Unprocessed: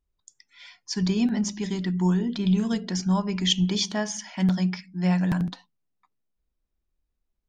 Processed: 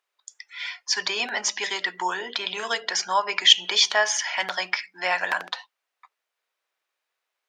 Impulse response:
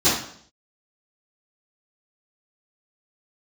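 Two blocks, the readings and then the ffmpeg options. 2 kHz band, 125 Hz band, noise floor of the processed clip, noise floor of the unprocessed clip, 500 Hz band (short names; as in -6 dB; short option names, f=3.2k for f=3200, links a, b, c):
+13.5 dB, under -30 dB, -84 dBFS, -79 dBFS, +2.0 dB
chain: -filter_complex "[0:a]equalizer=f=1.9k:w=0.43:g=12,asplit=2[a][b];[b]alimiter=limit=-17dB:level=0:latency=1:release=162,volume=-1dB[c];[a][c]amix=inputs=2:normalize=0,highpass=f=490:w=0.5412,highpass=f=490:w=1.3066,volume=-1.5dB"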